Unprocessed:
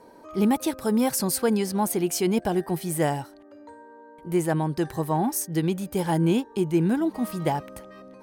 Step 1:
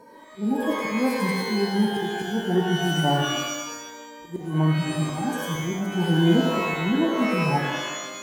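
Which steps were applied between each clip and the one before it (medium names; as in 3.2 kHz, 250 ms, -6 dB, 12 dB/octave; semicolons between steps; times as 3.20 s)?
harmonic-percussive separation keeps harmonic; slow attack 271 ms; pitch-shifted reverb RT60 1 s, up +12 st, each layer -2 dB, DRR 1.5 dB; trim +2.5 dB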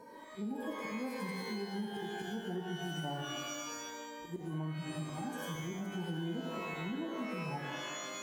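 compression 4:1, threshold -34 dBFS, peak gain reduction 17 dB; trim -4.5 dB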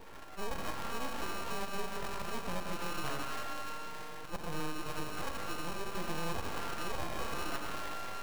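sorted samples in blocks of 32 samples; full-wave rectifier; trim +4.5 dB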